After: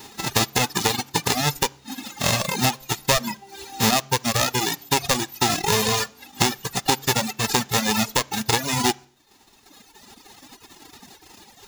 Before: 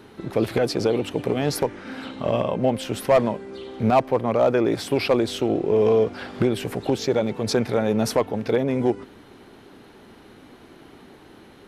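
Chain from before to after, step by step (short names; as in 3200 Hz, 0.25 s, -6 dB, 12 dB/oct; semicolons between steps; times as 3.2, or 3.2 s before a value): spectral whitening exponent 0.1; reverb removal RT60 0.62 s; compressor 4:1, threshold -21 dBFS, peak gain reduction 9.5 dB; reverb RT60 0.50 s, pre-delay 3 ms, DRR 12.5 dB; reverb removal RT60 2 s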